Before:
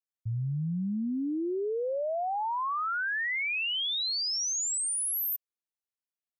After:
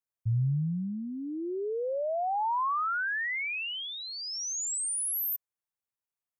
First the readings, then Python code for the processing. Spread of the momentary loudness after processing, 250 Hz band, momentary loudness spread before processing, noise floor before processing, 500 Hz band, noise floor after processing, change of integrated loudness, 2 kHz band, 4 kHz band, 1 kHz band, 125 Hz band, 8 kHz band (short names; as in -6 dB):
7 LU, -3.0 dB, 5 LU, under -85 dBFS, -0.5 dB, under -85 dBFS, -1.0 dB, -1.0 dB, -6.5 dB, +1.5 dB, +3.5 dB, -2.0 dB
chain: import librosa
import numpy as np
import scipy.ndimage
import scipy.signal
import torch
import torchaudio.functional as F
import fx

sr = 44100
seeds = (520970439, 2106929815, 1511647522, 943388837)

y = fx.graphic_eq(x, sr, hz=(125, 250, 1000, 4000), db=(6, -7, 3, -9))